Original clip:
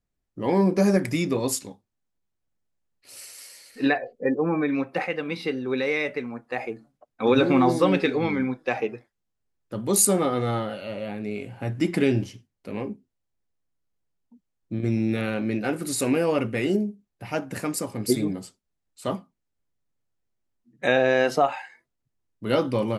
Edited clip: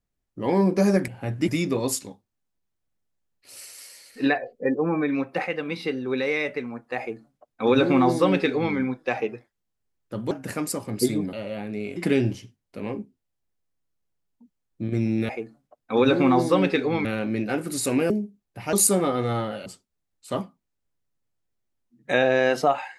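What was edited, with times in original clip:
6.59–8.35 copy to 15.2
9.91–10.84 swap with 17.38–18.4
11.47–11.87 move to 1.08
16.25–16.75 cut

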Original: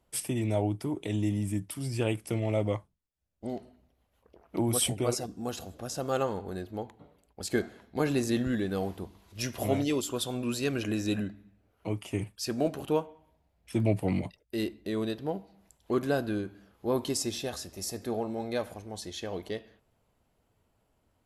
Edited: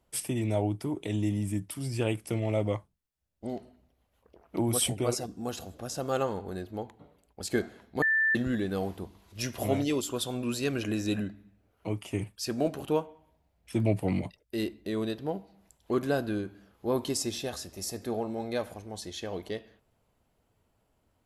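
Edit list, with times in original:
8.02–8.35 bleep 1770 Hz -22 dBFS

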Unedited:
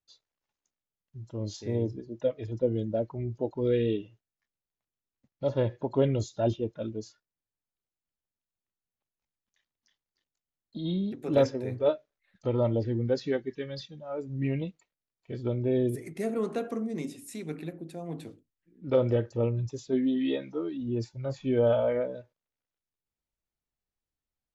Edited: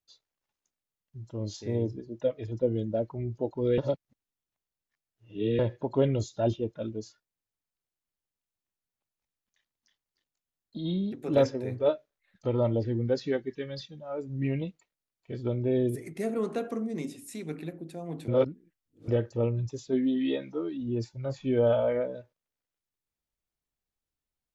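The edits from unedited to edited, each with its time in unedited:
3.78–5.59 reverse
18.28–19.08 reverse

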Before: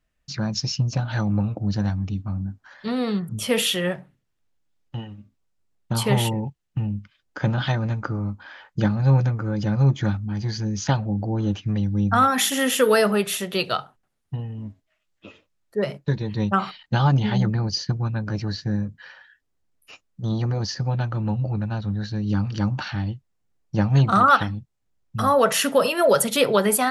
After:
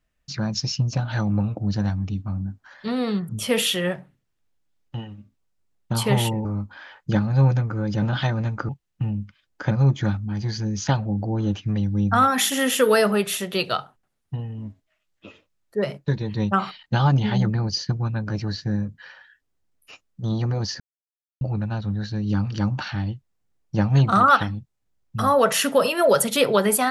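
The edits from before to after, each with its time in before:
6.45–7.47 swap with 8.14–9.71
20.8–21.41 mute

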